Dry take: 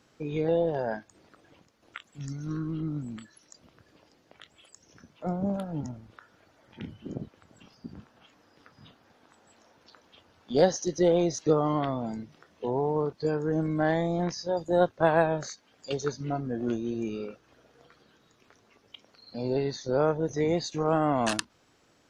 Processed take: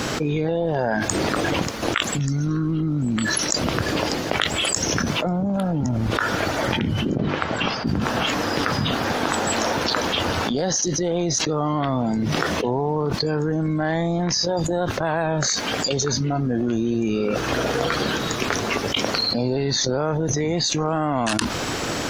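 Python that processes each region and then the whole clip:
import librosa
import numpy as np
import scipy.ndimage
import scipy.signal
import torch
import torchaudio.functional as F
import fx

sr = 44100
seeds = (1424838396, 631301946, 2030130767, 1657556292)

y = fx.chain(x, sr, fx.lowpass(hz=3300.0, slope=12),
    fx.low_shelf(hz=380.0, db=-10.0),
    fx.hum_notches(base_hz=50, count=8), at=(7.18, 7.87))
y = fx.dynamic_eq(y, sr, hz=480.0, q=1.1, threshold_db=-36.0, ratio=4.0, max_db=-5)
y = fx.env_flatten(y, sr, amount_pct=100)
y = F.gain(torch.from_numpy(y), -1.5).numpy()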